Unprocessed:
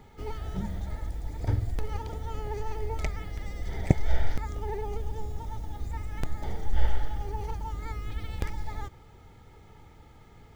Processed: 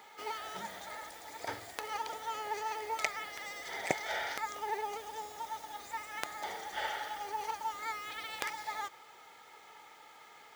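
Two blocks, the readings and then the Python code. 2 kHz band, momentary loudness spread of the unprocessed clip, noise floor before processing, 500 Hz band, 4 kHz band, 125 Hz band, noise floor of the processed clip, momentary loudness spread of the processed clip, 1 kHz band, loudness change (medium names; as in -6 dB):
+6.5 dB, 23 LU, -53 dBFS, -4.0 dB, +6.5 dB, -29.0 dB, -56 dBFS, 19 LU, +4.0 dB, -4.0 dB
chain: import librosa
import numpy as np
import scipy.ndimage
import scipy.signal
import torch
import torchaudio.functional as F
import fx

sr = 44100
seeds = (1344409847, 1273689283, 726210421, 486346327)

y = scipy.signal.sosfilt(scipy.signal.butter(2, 840.0, 'highpass', fs=sr, output='sos'), x)
y = F.gain(torch.from_numpy(y), 6.5).numpy()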